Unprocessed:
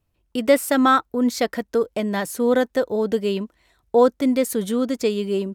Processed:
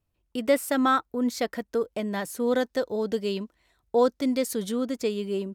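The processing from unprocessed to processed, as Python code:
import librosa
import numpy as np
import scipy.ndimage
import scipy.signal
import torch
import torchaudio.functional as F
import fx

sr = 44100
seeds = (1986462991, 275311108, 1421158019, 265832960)

y = fx.dynamic_eq(x, sr, hz=4900.0, q=1.4, threshold_db=-49.0, ratio=4.0, max_db=7, at=(2.46, 4.72))
y = y * 10.0 ** (-6.0 / 20.0)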